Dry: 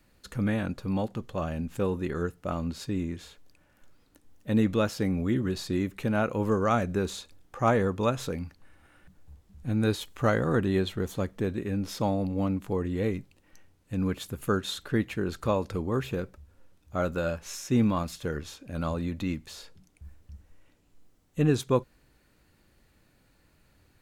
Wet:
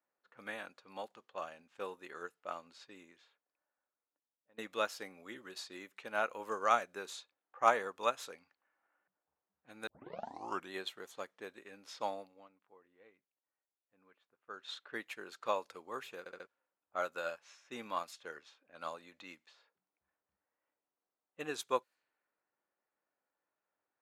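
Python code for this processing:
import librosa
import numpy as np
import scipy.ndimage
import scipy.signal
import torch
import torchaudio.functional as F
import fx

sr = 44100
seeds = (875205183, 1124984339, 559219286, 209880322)

y = fx.edit(x, sr, fx.fade_out_to(start_s=3.01, length_s=1.57, floor_db=-17.5),
    fx.tape_start(start_s=9.87, length_s=0.84),
    fx.fade_down_up(start_s=12.19, length_s=2.56, db=-12.0, fade_s=0.38, curve='qua'),
    fx.stutter_over(start_s=16.19, slice_s=0.07, count=4), tone=tone)
y = fx.env_lowpass(y, sr, base_hz=1100.0, full_db=-26.0)
y = scipy.signal.sosfilt(scipy.signal.butter(2, 740.0, 'highpass', fs=sr, output='sos'), y)
y = fx.upward_expand(y, sr, threshold_db=-52.0, expansion=1.5)
y = y * librosa.db_to_amplitude(1.0)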